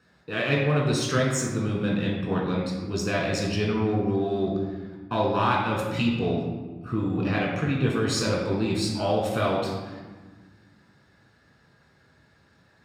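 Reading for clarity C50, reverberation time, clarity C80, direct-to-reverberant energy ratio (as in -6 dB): 2.5 dB, 1.4 s, 4.5 dB, -3.0 dB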